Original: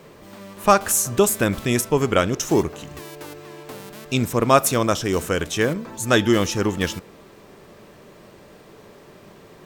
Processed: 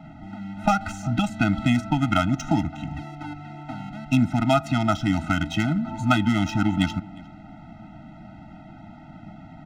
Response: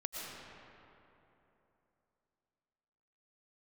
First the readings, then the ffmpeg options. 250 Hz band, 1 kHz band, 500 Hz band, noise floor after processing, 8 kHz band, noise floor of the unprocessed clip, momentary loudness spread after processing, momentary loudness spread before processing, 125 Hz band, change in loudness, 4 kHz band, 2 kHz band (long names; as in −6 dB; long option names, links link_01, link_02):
+1.0 dB, −3.0 dB, −10.5 dB, −45 dBFS, −17.5 dB, −47 dBFS, 17 LU, 20 LU, +2.0 dB, −3.5 dB, −4.5 dB, −3.0 dB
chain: -filter_complex "[0:a]acrossover=split=150|1800|6600[link_01][link_02][link_03][link_04];[link_01]acompressor=threshold=-38dB:ratio=4[link_05];[link_02]acompressor=threshold=-23dB:ratio=4[link_06];[link_03]acompressor=threshold=-31dB:ratio=4[link_07];[link_04]acompressor=threshold=-40dB:ratio=4[link_08];[link_05][link_06][link_07][link_08]amix=inputs=4:normalize=0,acrusher=bits=6:mode=log:mix=0:aa=0.000001,adynamicsmooth=sensitivity=1.5:basefreq=2000,asplit=2[link_09][link_10];[link_10]adelay=355.7,volume=-22dB,highshelf=frequency=4000:gain=-8[link_11];[link_09][link_11]amix=inputs=2:normalize=0,afftfilt=real='re*eq(mod(floor(b*sr/1024/310),2),0)':imag='im*eq(mod(floor(b*sr/1024/310),2),0)':win_size=1024:overlap=0.75,volume=8dB"